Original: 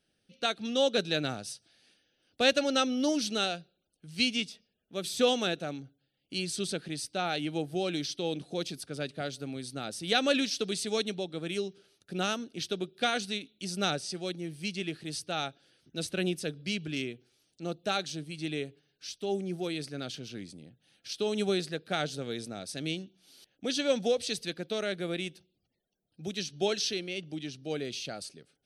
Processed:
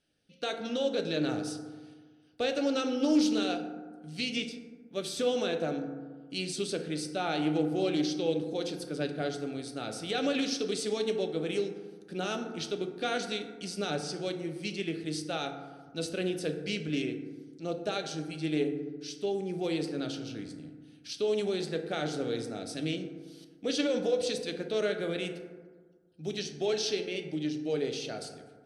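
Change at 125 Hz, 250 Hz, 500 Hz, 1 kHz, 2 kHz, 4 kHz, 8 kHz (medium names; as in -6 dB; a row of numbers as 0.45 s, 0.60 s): 0.0 dB, +2.5 dB, +1.0 dB, -2.5 dB, -3.0 dB, -4.0 dB, -3.0 dB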